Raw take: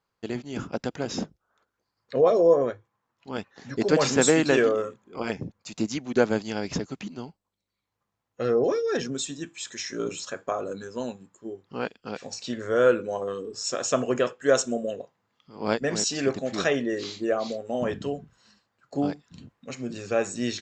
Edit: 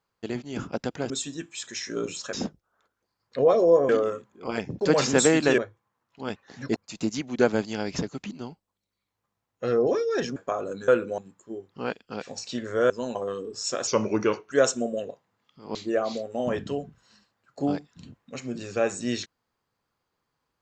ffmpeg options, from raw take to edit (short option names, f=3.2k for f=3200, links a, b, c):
-filter_complex "[0:a]asplit=15[a][b][c][d][e][f][g][h][i][j][k][l][m][n][o];[a]atrim=end=1.102[p];[b]atrim=start=9.128:end=10.362[q];[c]atrim=start=1.098:end=2.662[r];[d]atrim=start=4.608:end=5.532[s];[e]atrim=start=3.838:end=4.612[t];[f]atrim=start=2.658:end=3.842[u];[g]atrim=start=5.528:end=9.132[v];[h]atrim=start=10.358:end=10.882[w];[i]atrim=start=12.848:end=13.152[x];[j]atrim=start=11.128:end=12.852[y];[k]atrim=start=10.878:end=11.132[z];[l]atrim=start=13.148:end=13.874[aa];[m]atrim=start=13.87:end=14.43,asetpts=PTS-STARTPTS,asetrate=37926,aresample=44100,atrim=end_sample=28716,asetpts=PTS-STARTPTS[ab];[n]atrim=start=14.426:end=15.662[ac];[o]atrim=start=17.098[ad];[p][q]acrossfade=d=0.004:c1=hsin:c2=hsin[ae];[ae][r]acrossfade=d=0.004:c1=hsin:c2=hsin[af];[af][s]acrossfade=d=0.004:c1=hsin:c2=hsin[ag];[ag][t]acrossfade=d=0.004:c1=hsin:c2=hsin[ah];[ah][u]acrossfade=d=0.004:c1=hsin:c2=hsin[ai];[ai][v]acrossfade=d=0.004:c1=hsin:c2=hsin[aj];[aj][w]acrossfade=d=0.004:c1=hsin:c2=hsin[ak];[ak][x]acrossfade=d=0.004:c1=hsin:c2=hsin[al];[al][y]acrossfade=d=0.004:c1=hsin:c2=hsin[am];[am][z]acrossfade=d=0.004:c1=hsin:c2=hsin[an];[an][aa]acrossfade=d=0.004:c1=hsin:c2=hsin[ao];[ao][ab]acrossfade=d=0.004:c1=hsin:c2=hsin[ap];[ap][ac]acrossfade=d=0.004:c1=hsin:c2=hsin[aq];[aq][ad]acrossfade=d=0.004:c1=hsin:c2=hsin"